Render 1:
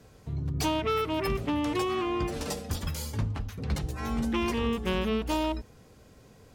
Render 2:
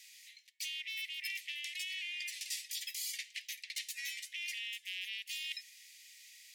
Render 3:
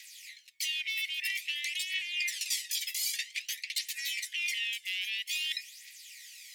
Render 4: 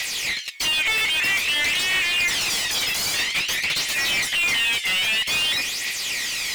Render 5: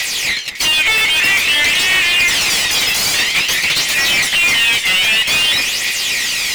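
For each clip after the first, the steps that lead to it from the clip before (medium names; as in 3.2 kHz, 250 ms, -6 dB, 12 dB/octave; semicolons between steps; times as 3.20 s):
steep high-pass 1.9 kHz 96 dB/octave; reverse; compression 10:1, threshold -47 dBFS, peak gain reduction 17 dB; reverse; trim +9.5 dB
phaser 0.51 Hz, delay 1.5 ms, feedback 54%; trim +6 dB
overdrive pedal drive 34 dB, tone 3.4 kHz, clips at -17 dBFS; trim +4 dB
two-band feedback delay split 2 kHz, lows 223 ms, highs 552 ms, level -11 dB; trim +8 dB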